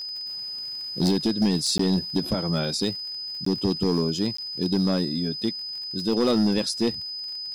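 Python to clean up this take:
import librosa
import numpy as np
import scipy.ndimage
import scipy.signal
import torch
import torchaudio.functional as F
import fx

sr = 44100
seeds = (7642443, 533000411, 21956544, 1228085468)

y = fx.fix_declip(x, sr, threshold_db=-16.0)
y = fx.fix_declick_ar(y, sr, threshold=6.5)
y = fx.notch(y, sr, hz=5000.0, q=30.0)
y = fx.fix_interpolate(y, sr, at_s=(1.78, 3.45, 4.37), length_ms=14.0)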